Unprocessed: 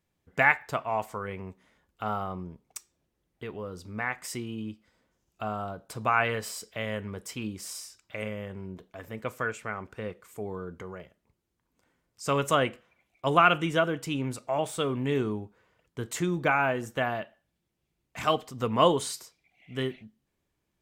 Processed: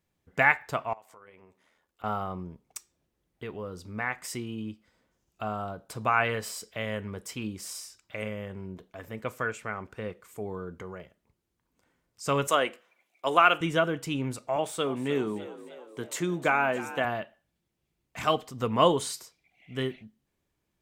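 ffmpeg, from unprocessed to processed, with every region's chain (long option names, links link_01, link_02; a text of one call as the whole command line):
ffmpeg -i in.wav -filter_complex "[0:a]asettb=1/sr,asplit=3[link_01][link_02][link_03];[link_01]atrim=end=0.934[link_04];[link_02]atrim=start=0.93:end=2.04,asetpts=PTS-STARTPTS,afade=type=in:duration=0.004:curve=qsin,afade=type=out:start_time=1.106:duration=0.004:curve=qsin,bass=frequency=250:gain=-12,treble=frequency=4000:gain=1,acompressor=threshold=-51dB:ratio=3:attack=3.2:release=140:knee=1:detection=peak,tremolo=f=83:d=0.519[link_05];[link_03]atrim=start=2.036[link_06];[link_04][link_05]acrossfade=duration=0.004:curve1=hsin:curve2=qsin[link_07];[link_07][link_06]acrossfade=duration=0.004:curve1=qsin:curve2=hsin,asettb=1/sr,asplit=3[link_08][link_09][link_10];[link_08]atrim=end=12.474[link_11];[link_09]atrim=start=12.47:end=13.61,asetpts=PTS-STARTPTS,afade=type=in:duration=0.004:curve=qsin,afade=type=out:start_time=1.136:duration=0.004:curve=qsin,highpass=340,highshelf=frequency=4900:gain=4[link_12];[link_10]atrim=start=13.606[link_13];[link_11][link_12]acrossfade=duration=0.004:curve1=hsin:curve2=qsin[link_14];[link_14][link_13]acrossfade=duration=0.004:curve1=qsin:curve2=hsin,asettb=1/sr,asplit=3[link_15][link_16][link_17];[link_15]atrim=end=14.564[link_18];[link_16]atrim=start=14.56:end=17.05,asetpts=PTS-STARTPTS,afade=type=in:duration=0.004:curve=qsin,afade=type=out:start_time=2.486:duration=0.004:curve=qsin,highpass=180,asplit=7[link_19][link_20][link_21][link_22][link_23][link_24][link_25];[link_20]adelay=305,afreqshift=60,volume=-15dB[link_26];[link_21]adelay=610,afreqshift=120,volume=-19.9dB[link_27];[link_22]adelay=915,afreqshift=180,volume=-24.8dB[link_28];[link_23]adelay=1220,afreqshift=240,volume=-29.6dB[link_29];[link_24]adelay=1525,afreqshift=300,volume=-34.5dB[link_30];[link_25]adelay=1830,afreqshift=360,volume=-39.4dB[link_31];[link_19][link_26][link_27][link_28][link_29][link_30][link_31]amix=inputs=7:normalize=0,atrim=end_sample=109809[link_32];[link_17]atrim=start=17.046[link_33];[link_18][link_32]acrossfade=duration=0.004:curve1=hsin:curve2=qsin[link_34];[link_34][link_33]acrossfade=duration=0.004:curve1=qsin:curve2=hsin" out.wav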